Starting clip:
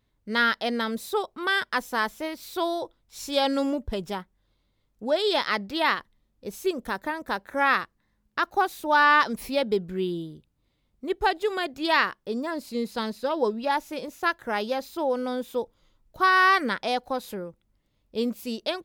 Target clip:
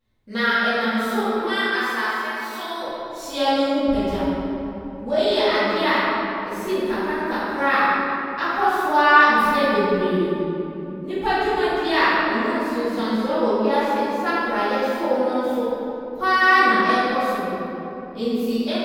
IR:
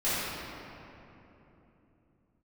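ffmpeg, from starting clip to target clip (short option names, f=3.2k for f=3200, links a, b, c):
-filter_complex "[0:a]asettb=1/sr,asplit=3[a][b][c];[a]atrim=end=1.484[d];[b]atrim=start=1.48:end=2.79,asetpts=PTS-STARTPTS,afade=t=in:d=0.004:c=qsin,afade=t=out:st=1.306:d=0.004:c=qsin,highpass=900[e];[c]atrim=start=2.786[f];[d][e]acrossfade=d=0.004:c1=hsin:c2=qsin[g];[g][f]acrossfade=d=0.004:c1=qsin:c2=hsin[h];[1:a]atrim=start_sample=2205[i];[h][i]afir=irnorm=-1:irlink=0,volume=-6.5dB"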